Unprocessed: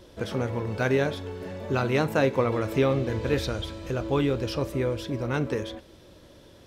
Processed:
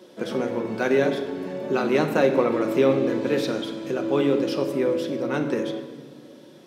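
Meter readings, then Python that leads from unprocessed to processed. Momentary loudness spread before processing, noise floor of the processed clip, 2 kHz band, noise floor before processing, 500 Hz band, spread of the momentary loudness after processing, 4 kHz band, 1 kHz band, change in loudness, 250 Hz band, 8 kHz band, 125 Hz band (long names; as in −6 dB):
9 LU, −47 dBFS, +1.5 dB, −52 dBFS, +4.5 dB, 10 LU, +1.0 dB, +2.0 dB, +3.5 dB, +5.0 dB, can't be measured, −6.0 dB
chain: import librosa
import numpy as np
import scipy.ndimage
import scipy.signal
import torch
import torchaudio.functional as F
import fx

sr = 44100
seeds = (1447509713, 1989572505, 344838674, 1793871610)

y = scipy.signal.sosfilt(scipy.signal.butter(4, 210.0, 'highpass', fs=sr, output='sos'), x)
y = fx.low_shelf(y, sr, hz=340.0, db=7.5)
y = fx.room_shoebox(y, sr, seeds[0], volume_m3=1600.0, walls='mixed', distance_m=1.0)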